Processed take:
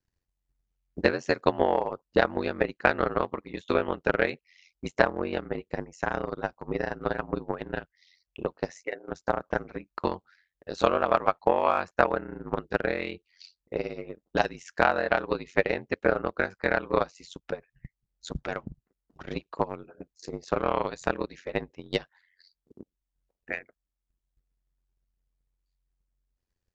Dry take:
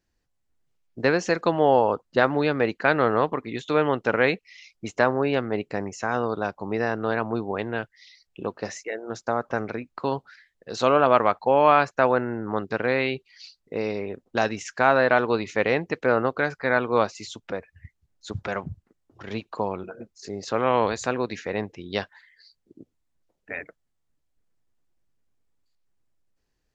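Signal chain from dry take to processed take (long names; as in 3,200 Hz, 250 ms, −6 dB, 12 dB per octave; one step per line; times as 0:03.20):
ring modulation 45 Hz
transient designer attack +11 dB, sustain −2 dB
level −7 dB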